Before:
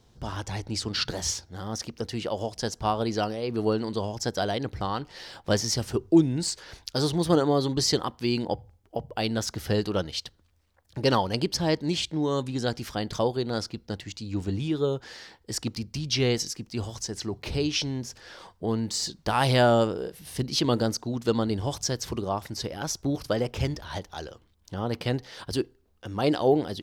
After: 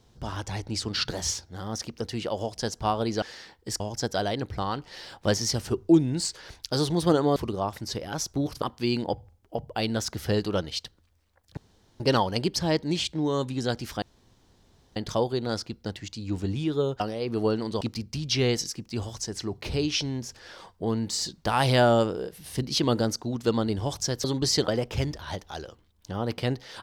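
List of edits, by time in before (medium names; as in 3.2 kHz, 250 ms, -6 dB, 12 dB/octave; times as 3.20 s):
3.22–4.03 s: swap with 15.04–15.62 s
7.59–8.03 s: swap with 22.05–23.31 s
10.98 s: insert room tone 0.43 s
13.00 s: insert room tone 0.94 s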